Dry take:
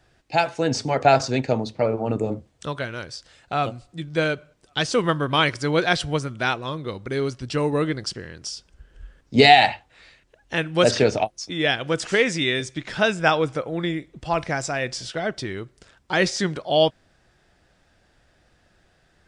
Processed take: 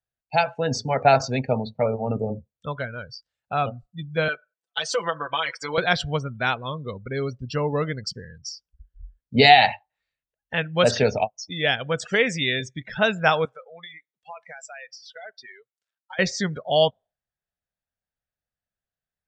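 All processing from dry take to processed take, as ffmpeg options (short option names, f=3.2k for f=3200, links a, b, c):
-filter_complex "[0:a]asettb=1/sr,asplit=3[a][b][c];[a]atrim=end=4.284[d];[b]atrim=start=4.28:end=5.78,asetpts=PTS-STARTPTS,afade=t=in:d=0.004:c=qsin,afade=t=out:st=1.496:d=0.004:c=qsin,highpass=430,acompressor=threshold=-22dB:ratio=4:attack=3.2:release=140:knee=1:detection=peak,aecho=1:1:6:0.8,atrim=end_sample=66150[e];[c]atrim=start=5.776[f];[d][e]acrossfade=d=0.004:c1=hsin:c2=qsin[g];[g][f]acrossfade=d=0.004:c1=qsin:c2=hsin,asettb=1/sr,asplit=3[h][i][j];[h]atrim=end=13.454[k];[i]atrim=start=13.45:end=16.19,asetpts=PTS-STARTPTS,afade=t=in:d=0.004:c=qsin,afade=t=out:st=2.736:d=0.004:c=qsin,highpass=f=1.5k:p=1,acompressor=threshold=-32dB:ratio=6:attack=3.2:release=140:knee=1:detection=peak[l];[j]atrim=start=16.186[m];[k][l]acrossfade=d=0.004:c1=hsin:c2=qsin[n];[n][m]acrossfade=d=0.004:c1=qsin:c2=hsin,equalizer=f=330:w=4.5:g=-13.5,afftdn=nr=33:nf=-33,bandreject=f=5k:w=18"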